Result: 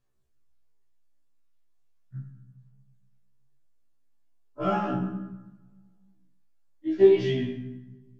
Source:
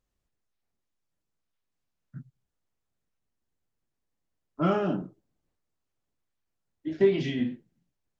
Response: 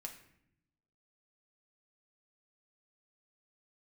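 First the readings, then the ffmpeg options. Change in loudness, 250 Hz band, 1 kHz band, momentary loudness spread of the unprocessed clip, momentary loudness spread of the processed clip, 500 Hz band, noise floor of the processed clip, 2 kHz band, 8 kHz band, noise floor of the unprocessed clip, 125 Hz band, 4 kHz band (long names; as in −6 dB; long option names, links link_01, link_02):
+2.5 dB, +1.5 dB, +3.0 dB, 17 LU, 23 LU, +4.5 dB, −62 dBFS, −0.5 dB, can't be measured, −83 dBFS, +1.5 dB, +1.0 dB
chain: -filter_complex "[0:a]aphaser=in_gain=1:out_gain=1:delay=3.7:decay=0.44:speed=0.38:type=sinusoidal[link_01];[1:a]atrim=start_sample=2205,asetrate=28665,aresample=44100[link_02];[link_01][link_02]afir=irnorm=-1:irlink=0,afftfilt=real='re*1.73*eq(mod(b,3),0)':imag='im*1.73*eq(mod(b,3),0)':win_size=2048:overlap=0.75,volume=3.5dB"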